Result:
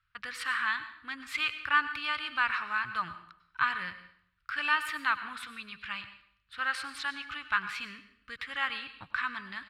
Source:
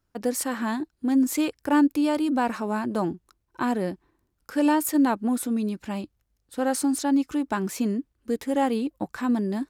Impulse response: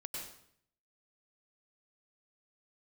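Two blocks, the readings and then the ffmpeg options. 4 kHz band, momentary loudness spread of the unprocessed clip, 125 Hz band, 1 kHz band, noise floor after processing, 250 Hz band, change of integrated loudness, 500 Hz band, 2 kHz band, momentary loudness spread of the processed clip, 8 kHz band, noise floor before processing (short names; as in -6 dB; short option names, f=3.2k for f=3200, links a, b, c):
+3.5 dB, 10 LU, -19.0 dB, -4.0 dB, -73 dBFS, -29.0 dB, -6.5 dB, -26.0 dB, +7.0 dB, 14 LU, -17.5 dB, -75 dBFS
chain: -filter_complex "[0:a]firequalizer=gain_entry='entry(130,0);entry(220,-24);entry(370,-26);entry(760,-16);entry(1200,11);entry(2600,12);entry(4200,5);entry(6400,-14);entry(9000,-13);entry(14000,-21)':delay=0.05:min_phase=1,asplit=2[a][b];[1:a]atrim=start_sample=2205,lowshelf=f=150:g=-11.5[c];[b][c]afir=irnorm=-1:irlink=0,volume=-6dB[d];[a][d]amix=inputs=2:normalize=0,volume=-6.5dB"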